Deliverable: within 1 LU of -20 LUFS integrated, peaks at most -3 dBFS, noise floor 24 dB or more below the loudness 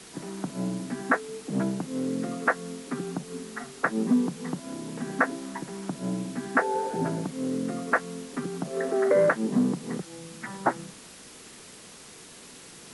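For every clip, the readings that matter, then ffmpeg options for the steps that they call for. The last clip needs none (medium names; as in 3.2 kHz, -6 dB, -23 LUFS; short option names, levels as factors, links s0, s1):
noise floor -48 dBFS; noise floor target -53 dBFS; loudness -29.0 LUFS; peak level -7.0 dBFS; loudness target -20.0 LUFS
-> -af "afftdn=nr=6:nf=-48"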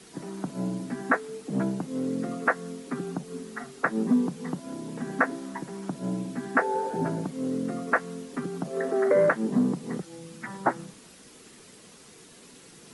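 noise floor -51 dBFS; noise floor target -53 dBFS
-> -af "afftdn=nr=6:nf=-51"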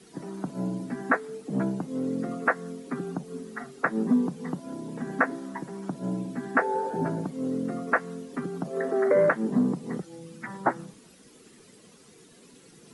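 noise floor -54 dBFS; loudness -29.0 LUFS; peak level -7.5 dBFS; loudness target -20.0 LUFS
-> -af "volume=2.82,alimiter=limit=0.708:level=0:latency=1"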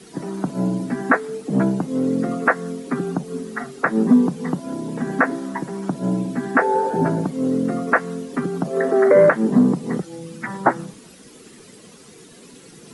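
loudness -20.5 LUFS; peak level -3.0 dBFS; noise floor -45 dBFS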